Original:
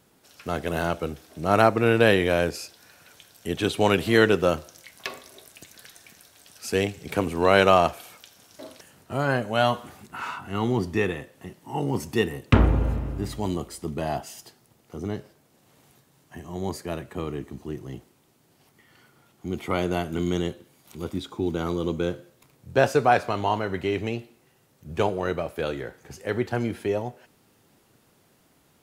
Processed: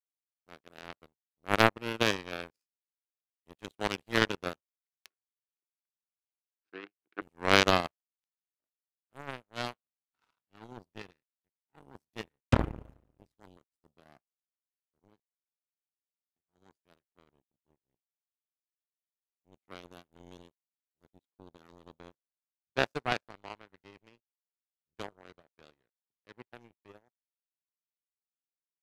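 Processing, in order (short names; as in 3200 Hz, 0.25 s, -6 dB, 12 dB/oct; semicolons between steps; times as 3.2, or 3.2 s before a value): power-law curve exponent 3; 5.1–7.22 speaker cabinet 290–3500 Hz, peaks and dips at 330 Hz +9 dB, 580 Hz -9 dB, 930 Hz -7 dB, 1500 Hz +7 dB, 3300 Hz -4 dB; gain +2 dB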